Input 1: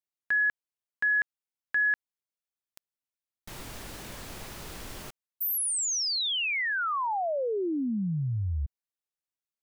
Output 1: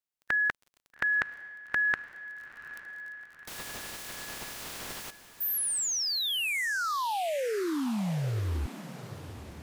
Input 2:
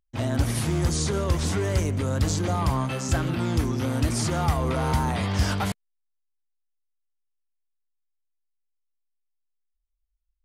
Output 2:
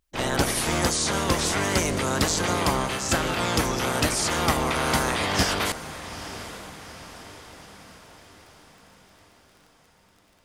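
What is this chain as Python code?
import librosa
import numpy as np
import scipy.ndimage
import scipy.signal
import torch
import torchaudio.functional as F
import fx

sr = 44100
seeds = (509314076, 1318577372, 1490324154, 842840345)

y = fx.spec_clip(x, sr, under_db=20)
y = fx.echo_diffused(y, sr, ms=858, feedback_pct=52, wet_db=-13.5)
y = fx.dmg_crackle(y, sr, seeds[0], per_s=27.0, level_db=-43.0)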